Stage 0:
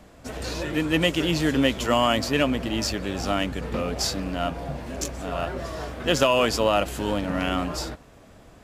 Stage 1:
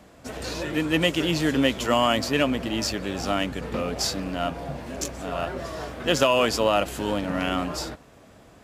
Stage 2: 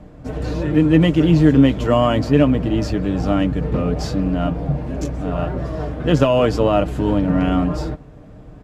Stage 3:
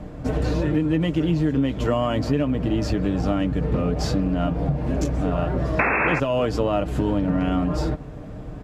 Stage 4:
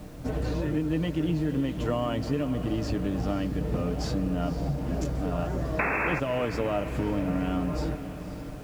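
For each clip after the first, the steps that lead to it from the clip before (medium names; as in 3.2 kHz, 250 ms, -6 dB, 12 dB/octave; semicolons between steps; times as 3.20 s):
high-pass 85 Hz 6 dB/octave
tilt EQ -4 dB/octave; comb 6.6 ms, depth 43%; trim +1.5 dB
painted sound noise, 5.79–6.20 s, 200–2700 Hz -13 dBFS; compression 6:1, threshold -24 dBFS, peak gain reduction 16 dB; trim +5 dB
added noise pink -48 dBFS; echo that smears into a reverb 534 ms, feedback 55%, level -12 dB; trim -6.5 dB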